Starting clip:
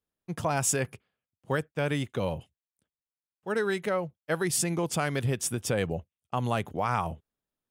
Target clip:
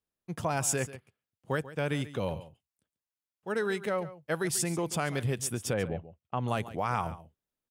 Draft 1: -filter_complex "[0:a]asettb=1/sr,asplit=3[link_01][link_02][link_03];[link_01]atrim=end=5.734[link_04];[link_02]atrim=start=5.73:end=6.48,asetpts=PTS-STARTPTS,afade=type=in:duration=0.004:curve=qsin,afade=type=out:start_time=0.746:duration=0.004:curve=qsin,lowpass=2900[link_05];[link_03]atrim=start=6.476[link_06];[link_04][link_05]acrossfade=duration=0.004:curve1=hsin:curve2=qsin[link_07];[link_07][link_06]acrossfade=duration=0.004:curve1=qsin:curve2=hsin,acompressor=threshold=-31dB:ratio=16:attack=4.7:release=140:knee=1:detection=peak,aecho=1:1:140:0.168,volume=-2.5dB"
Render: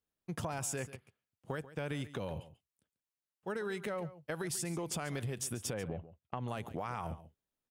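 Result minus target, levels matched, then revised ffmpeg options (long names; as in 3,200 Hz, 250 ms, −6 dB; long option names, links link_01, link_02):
downward compressor: peak gain reduction +11 dB
-filter_complex "[0:a]asettb=1/sr,asplit=3[link_01][link_02][link_03];[link_01]atrim=end=5.734[link_04];[link_02]atrim=start=5.73:end=6.48,asetpts=PTS-STARTPTS,afade=type=in:duration=0.004:curve=qsin,afade=type=out:start_time=0.746:duration=0.004:curve=qsin,lowpass=2900[link_05];[link_03]atrim=start=6.476[link_06];[link_04][link_05]acrossfade=duration=0.004:curve1=hsin:curve2=qsin[link_07];[link_07][link_06]acrossfade=duration=0.004:curve1=qsin:curve2=hsin,aecho=1:1:140:0.168,volume=-2.5dB"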